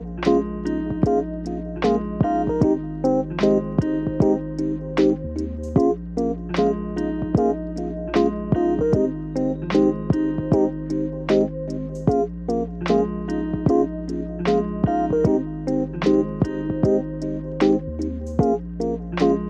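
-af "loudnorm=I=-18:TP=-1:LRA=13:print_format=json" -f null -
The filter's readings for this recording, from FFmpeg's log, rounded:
"input_i" : "-22.4",
"input_tp" : "-4.7",
"input_lra" : "1.2",
"input_thresh" : "-32.4",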